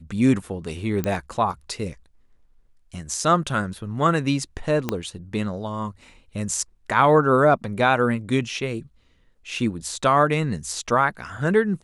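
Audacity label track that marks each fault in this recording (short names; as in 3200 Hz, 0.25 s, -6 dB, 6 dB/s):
1.040000	1.040000	pop -11 dBFS
4.890000	4.890000	pop -9 dBFS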